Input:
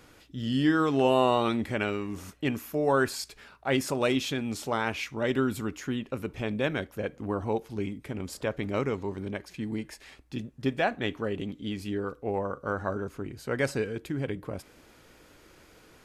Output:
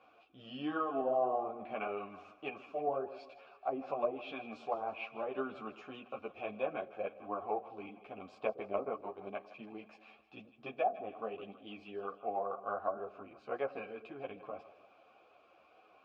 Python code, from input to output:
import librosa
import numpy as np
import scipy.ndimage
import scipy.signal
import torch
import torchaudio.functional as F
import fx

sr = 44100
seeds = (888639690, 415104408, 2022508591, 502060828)

p1 = scipy.signal.sosfilt(scipy.signal.butter(2, 4500.0, 'lowpass', fs=sr, output='sos'), x)
p2 = fx.transient(p1, sr, attack_db=6, sustain_db=-7, at=(8.42, 9.37), fade=0.02)
p3 = fx.vowel_filter(p2, sr, vowel='a')
p4 = fx.env_lowpass_down(p3, sr, base_hz=530.0, full_db=-33.0)
p5 = p4 + fx.echo_split(p4, sr, split_hz=560.0, low_ms=116, high_ms=159, feedback_pct=52, wet_db=-15, dry=0)
p6 = fx.ensemble(p5, sr)
y = p6 * 10.0 ** (8.5 / 20.0)